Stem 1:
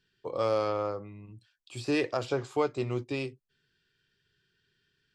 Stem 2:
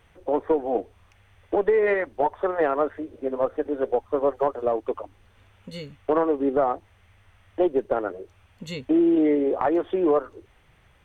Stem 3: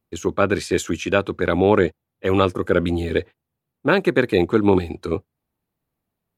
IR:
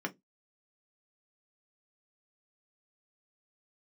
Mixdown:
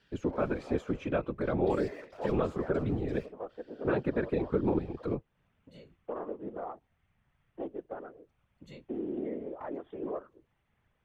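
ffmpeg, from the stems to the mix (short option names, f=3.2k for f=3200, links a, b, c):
-filter_complex "[0:a]asplit=2[a][b];[b]highpass=f=720:p=1,volume=35dB,asoftclip=type=tanh:threshold=-15dB[c];[a][c]amix=inputs=2:normalize=0,lowpass=f=2.5k:p=1,volume=-6dB,acompressor=threshold=-34dB:ratio=6,lowshelf=f=65:g=8,volume=-13dB[d];[1:a]volume=-10dB[e];[2:a]lowpass=f=1.1k:p=1,volume=2.5dB[f];[e][f]amix=inputs=2:normalize=0,highshelf=f=3.4k:g=-8,acompressor=threshold=-25dB:ratio=2,volume=0dB[g];[d][g]amix=inputs=2:normalize=0,afftfilt=real='hypot(re,im)*cos(2*PI*random(0))':imag='hypot(re,im)*sin(2*PI*random(1))':win_size=512:overlap=0.75"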